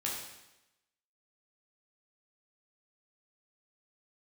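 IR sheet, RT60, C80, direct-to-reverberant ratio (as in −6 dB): 0.95 s, 5.0 dB, −4.5 dB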